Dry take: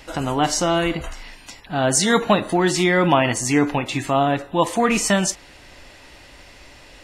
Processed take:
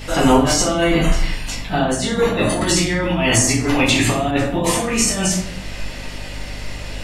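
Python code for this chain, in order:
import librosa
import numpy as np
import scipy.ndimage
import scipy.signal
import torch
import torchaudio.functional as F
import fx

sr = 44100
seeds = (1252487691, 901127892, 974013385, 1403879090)

y = fx.bass_treble(x, sr, bass_db=-1, treble_db=3)
y = fx.over_compress(y, sr, threshold_db=-23.0, ratio=-0.5)
y = fx.room_shoebox(y, sr, seeds[0], volume_m3=83.0, walls='mixed', distance_m=1.6)
y = fx.add_hum(y, sr, base_hz=50, snr_db=15)
y = fx.band_squash(y, sr, depth_pct=70, at=(2.61, 4.31))
y = y * librosa.db_to_amplitude(-1.0)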